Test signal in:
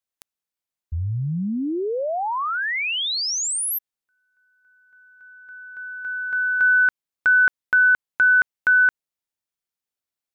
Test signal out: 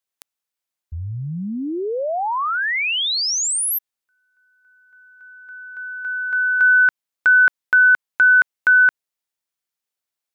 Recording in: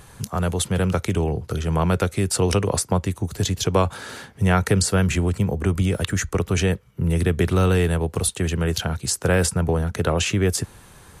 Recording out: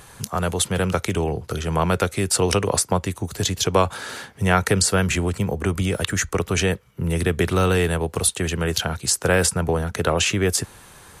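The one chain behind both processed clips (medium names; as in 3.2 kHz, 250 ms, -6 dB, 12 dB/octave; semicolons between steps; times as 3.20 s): bass shelf 330 Hz -7 dB; trim +3.5 dB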